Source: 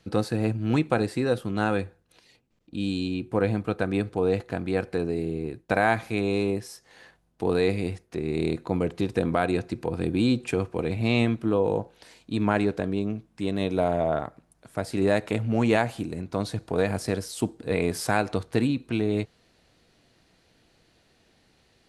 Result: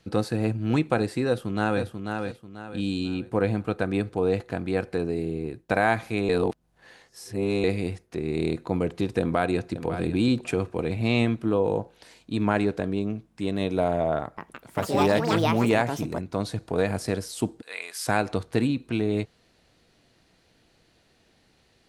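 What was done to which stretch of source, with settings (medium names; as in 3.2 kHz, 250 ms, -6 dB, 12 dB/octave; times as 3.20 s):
1.27–1.82 s: echo throw 490 ms, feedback 35%, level -5.5 dB
6.29–7.64 s: reverse
9.20–9.85 s: echo throw 550 ms, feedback 15%, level -10.5 dB
14.21–16.77 s: ever faster or slower copies 166 ms, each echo +6 st, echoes 2
17.62–18.07 s: high-pass 1.5 kHz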